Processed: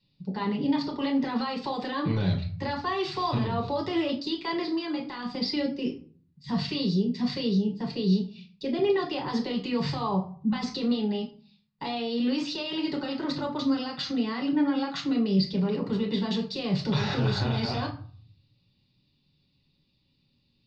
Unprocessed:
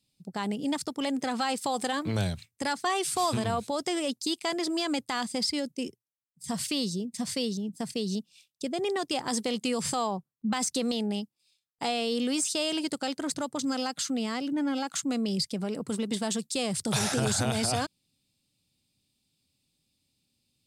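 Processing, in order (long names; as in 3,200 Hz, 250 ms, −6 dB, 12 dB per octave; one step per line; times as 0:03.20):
elliptic low-pass filter 4,700 Hz, stop band 60 dB
brickwall limiter −27 dBFS, peak gain reduction 10 dB
0:04.62–0:05.29: tuned comb filter 61 Hz, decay 0.29 s, harmonics all, mix 60%
convolution reverb RT60 0.45 s, pre-delay 7 ms, DRR −1 dB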